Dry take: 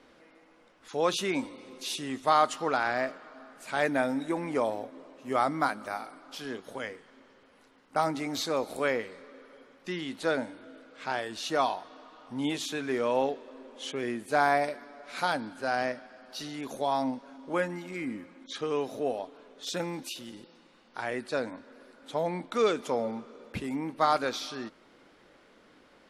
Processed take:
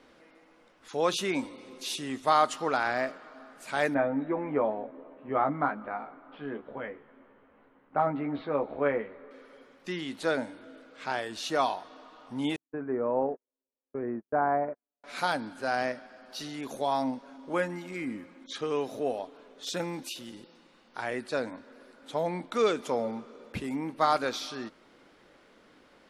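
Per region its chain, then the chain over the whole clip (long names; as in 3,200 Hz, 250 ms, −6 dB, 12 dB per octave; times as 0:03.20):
0:03.94–0:09.31: Gaussian smoothing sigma 3.9 samples + double-tracking delay 14 ms −5 dB
0:12.56–0:15.04: Bessel low-pass filter 1,000 Hz, order 6 + noise gate −38 dBFS, range −48 dB
whole clip: no processing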